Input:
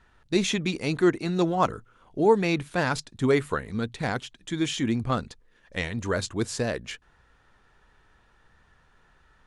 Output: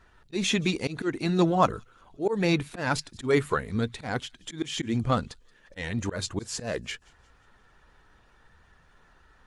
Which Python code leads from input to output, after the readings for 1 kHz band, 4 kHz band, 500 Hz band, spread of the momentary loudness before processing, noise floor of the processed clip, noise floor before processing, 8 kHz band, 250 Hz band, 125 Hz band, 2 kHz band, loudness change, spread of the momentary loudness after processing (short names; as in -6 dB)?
-1.0 dB, 0.0 dB, -3.0 dB, 12 LU, -60 dBFS, -62 dBFS, 0.0 dB, -2.0 dB, 0.0 dB, -1.5 dB, -1.5 dB, 12 LU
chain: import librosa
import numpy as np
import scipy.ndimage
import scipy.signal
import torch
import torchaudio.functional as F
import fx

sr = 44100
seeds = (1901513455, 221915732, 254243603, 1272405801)

y = fx.spec_quant(x, sr, step_db=15)
y = fx.auto_swell(y, sr, attack_ms=160.0)
y = fx.echo_wet_highpass(y, sr, ms=177, feedback_pct=47, hz=3400.0, wet_db=-23.0)
y = F.gain(torch.from_numpy(y), 2.0).numpy()